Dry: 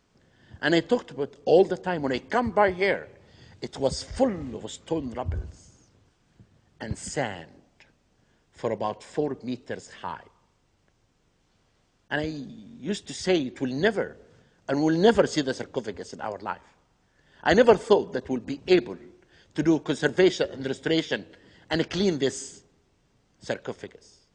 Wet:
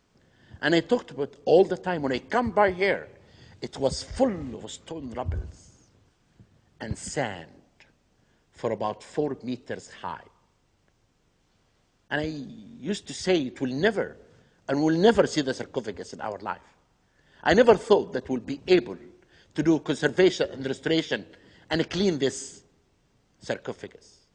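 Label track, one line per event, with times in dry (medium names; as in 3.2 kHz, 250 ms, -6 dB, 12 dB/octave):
4.530000	5.150000	compression 5:1, threshold -32 dBFS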